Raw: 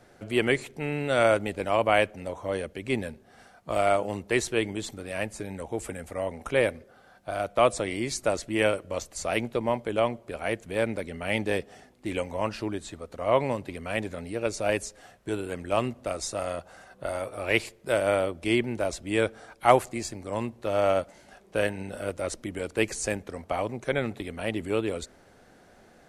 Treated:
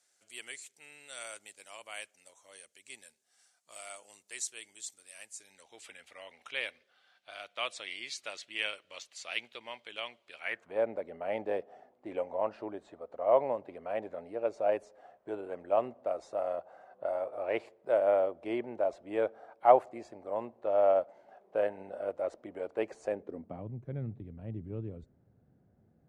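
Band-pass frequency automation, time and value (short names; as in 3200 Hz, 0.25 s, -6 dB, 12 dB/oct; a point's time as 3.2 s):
band-pass, Q 1.9
5.34 s 7600 Hz
5.9 s 3200 Hz
10.37 s 3200 Hz
10.79 s 660 Hz
23.07 s 660 Hz
23.7 s 120 Hz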